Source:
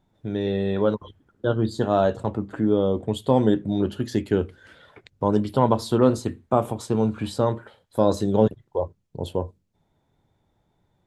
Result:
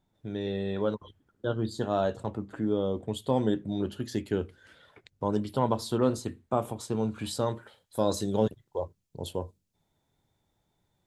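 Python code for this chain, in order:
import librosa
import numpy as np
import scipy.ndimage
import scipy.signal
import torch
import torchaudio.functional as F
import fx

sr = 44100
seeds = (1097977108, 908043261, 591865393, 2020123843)

y = fx.high_shelf(x, sr, hz=3100.0, db=fx.steps((0.0, 5.5), (7.14, 12.0)))
y = y * librosa.db_to_amplitude(-7.5)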